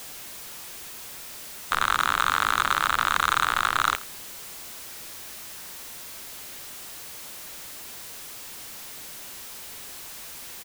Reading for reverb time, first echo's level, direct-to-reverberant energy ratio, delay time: none, -18.5 dB, none, 84 ms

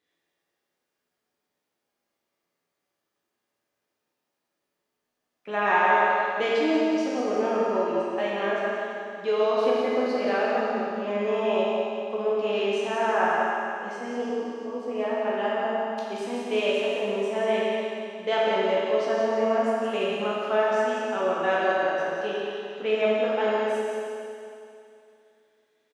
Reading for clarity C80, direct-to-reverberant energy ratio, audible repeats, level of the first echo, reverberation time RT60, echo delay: -3.0 dB, -7.5 dB, 1, -5.0 dB, 2.6 s, 0.177 s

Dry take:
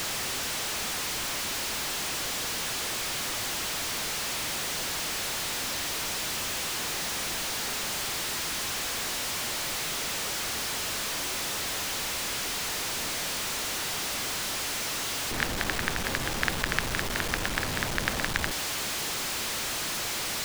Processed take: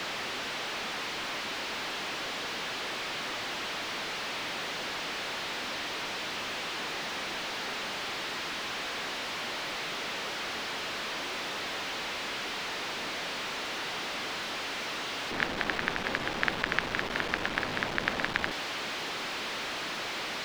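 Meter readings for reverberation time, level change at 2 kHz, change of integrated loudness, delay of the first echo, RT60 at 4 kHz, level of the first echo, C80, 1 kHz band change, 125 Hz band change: none, -0.5 dB, -4.0 dB, none, none, none, none, 0.0 dB, -7.5 dB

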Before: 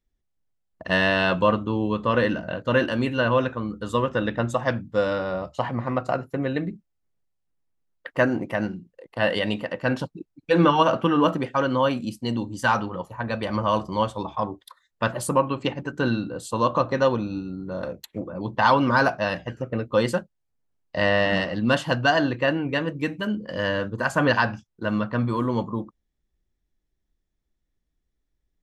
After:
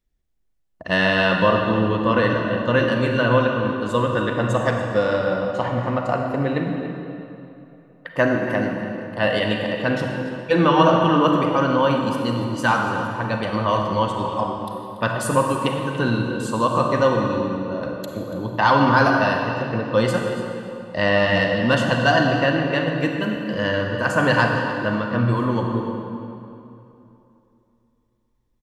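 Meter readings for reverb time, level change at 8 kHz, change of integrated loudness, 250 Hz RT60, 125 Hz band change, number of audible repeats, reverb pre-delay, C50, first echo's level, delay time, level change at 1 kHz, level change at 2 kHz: 2.9 s, +3.5 dB, +3.5 dB, 3.0 s, +5.0 dB, 1, 34 ms, 2.5 dB, -14.5 dB, 0.285 s, +4.0 dB, +4.0 dB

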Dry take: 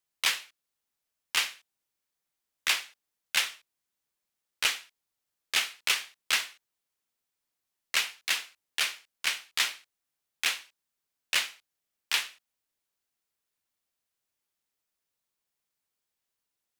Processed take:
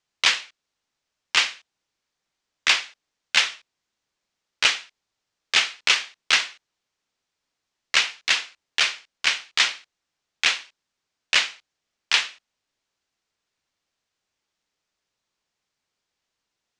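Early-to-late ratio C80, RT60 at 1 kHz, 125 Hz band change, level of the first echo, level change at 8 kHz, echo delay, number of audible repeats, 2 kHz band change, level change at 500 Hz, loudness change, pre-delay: none, none, n/a, none, +4.0 dB, none, none, +8.0 dB, +8.0 dB, +7.5 dB, none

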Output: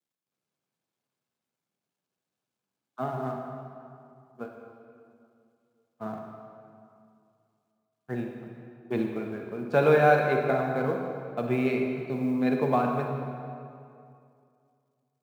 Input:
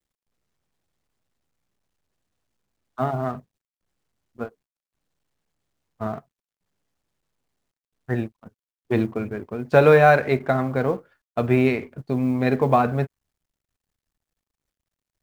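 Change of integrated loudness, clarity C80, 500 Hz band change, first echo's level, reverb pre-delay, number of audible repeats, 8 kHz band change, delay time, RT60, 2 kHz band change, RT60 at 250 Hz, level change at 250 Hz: -6.0 dB, 4.0 dB, -5.5 dB, none, 40 ms, none, n/a, none, 2.4 s, -5.5 dB, 2.6 s, -4.5 dB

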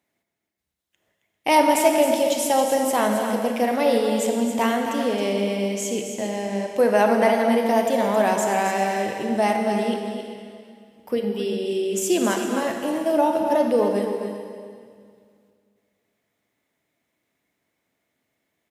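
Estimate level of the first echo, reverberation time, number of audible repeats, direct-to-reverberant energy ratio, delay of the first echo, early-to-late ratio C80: -9.0 dB, 2.1 s, 2, 2.0 dB, 0.269 s, 3.5 dB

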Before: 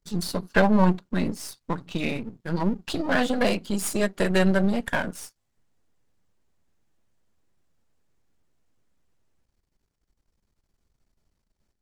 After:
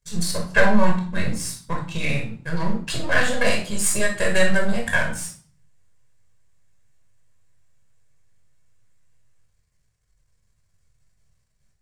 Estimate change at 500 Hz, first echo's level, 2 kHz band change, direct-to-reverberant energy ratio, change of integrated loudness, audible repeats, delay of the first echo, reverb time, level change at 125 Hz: +1.5 dB, none, +7.0 dB, 0.0 dB, +2.0 dB, none, none, 0.50 s, +1.0 dB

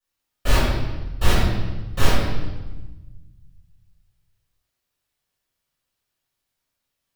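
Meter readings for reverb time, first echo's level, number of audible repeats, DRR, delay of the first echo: 1.2 s, none, none, -13.5 dB, none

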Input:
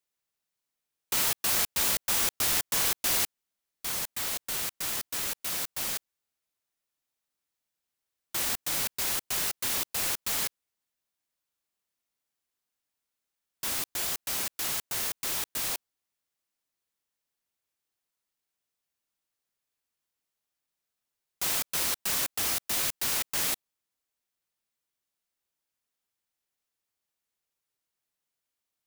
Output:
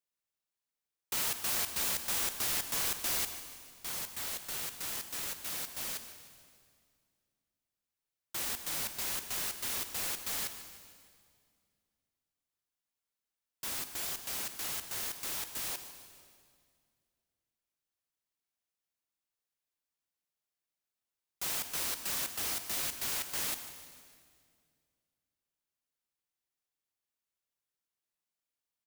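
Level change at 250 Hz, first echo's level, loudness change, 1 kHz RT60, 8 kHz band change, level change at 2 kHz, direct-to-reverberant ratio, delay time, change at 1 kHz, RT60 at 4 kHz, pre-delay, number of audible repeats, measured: -6.0 dB, -15.0 dB, -6.0 dB, 2.0 s, -6.0 dB, -6.0 dB, 8.5 dB, 0.151 s, -6.0 dB, 1.9 s, 38 ms, 4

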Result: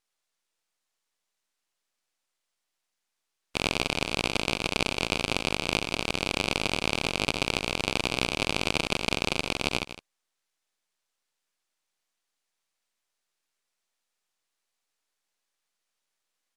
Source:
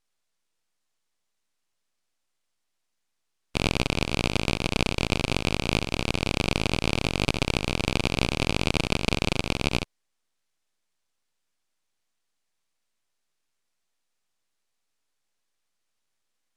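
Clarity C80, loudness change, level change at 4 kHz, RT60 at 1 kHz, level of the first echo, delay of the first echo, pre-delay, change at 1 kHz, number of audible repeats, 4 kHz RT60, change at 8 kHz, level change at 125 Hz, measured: none, -1.5 dB, 0.0 dB, none, -13.0 dB, 0.16 s, none, -0.5 dB, 1, none, 0.0 dB, -8.5 dB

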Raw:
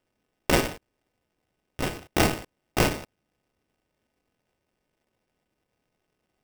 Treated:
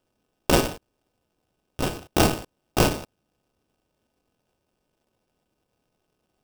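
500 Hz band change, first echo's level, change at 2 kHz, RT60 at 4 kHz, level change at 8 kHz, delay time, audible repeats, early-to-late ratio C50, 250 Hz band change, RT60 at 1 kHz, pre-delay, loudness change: +3.0 dB, none, -1.0 dB, none, +3.0 dB, none, none, none, +3.0 dB, none, none, +2.5 dB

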